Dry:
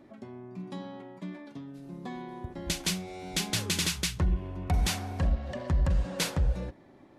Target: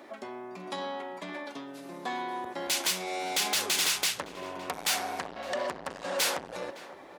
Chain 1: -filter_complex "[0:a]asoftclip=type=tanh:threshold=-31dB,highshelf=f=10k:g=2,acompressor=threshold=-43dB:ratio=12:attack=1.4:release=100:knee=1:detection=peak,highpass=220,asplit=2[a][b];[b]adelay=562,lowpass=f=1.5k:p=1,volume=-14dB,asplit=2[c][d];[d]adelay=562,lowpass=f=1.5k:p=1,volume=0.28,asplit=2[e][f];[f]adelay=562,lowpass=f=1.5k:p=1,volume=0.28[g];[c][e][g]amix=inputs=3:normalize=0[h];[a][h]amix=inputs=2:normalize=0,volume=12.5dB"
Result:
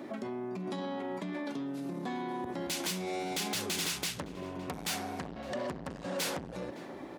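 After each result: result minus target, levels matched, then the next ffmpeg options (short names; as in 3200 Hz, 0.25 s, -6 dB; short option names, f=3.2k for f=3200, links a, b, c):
250 Hz band +11.0 dB; compressor: peak gain reduction +7.5 dB
-filter_complex "[0:a]asoftclip=type=tanh:threshold=-31dB,highshelf=f=10k:g=2,acompressor=threshold=-43dB:ratio=12:attack=1.4:release=100:knee=1:detection=peak,highpass=570,asplit=2[a][b];[b]adelay=562,lowpass=f=1.5k:p=1,volume=-14dB,asplit=2[c][d];[d]adelay=562,lowpass=f=1.5k:p=1,volume=0.28,asplit=2[e][f];[f]adelay=562,lowpass=f=1.5k:p=1,volume=0.28[g];[c][e][g]amix=inputs=3:normalize=0[h];[a][h]amix=inputs=2:normalize=0,volume=12.5dB"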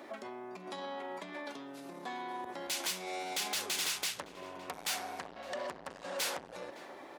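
compressor: peak gain reduction +7.5 dB
-filter_complex "[0:a]asoftclip=type=tanh:threshold=-31dB,highshelf=f=10k:g=2,acompressor=threshold=-35dB:ratio=12:attack=1.4:release=100:knee=1:detection=peak,highpass=570,asplit=2[a][b];[b]adelay=562,lowpass=f=1.5k:p=1,volume=-14dB,asplit=2[c][d];[d]adelay=562,lowpass=f=1.5k:p=1,volume=0.28,asplit=2[e][f];[f]adelay=562,lowpass=f=1.5k:p=1,volume=0.28[g];[c][e][g]amix=inputs=3:normalize=0[h];[a][h]amix=inputs=2:normalize=0,volume=12.5dB"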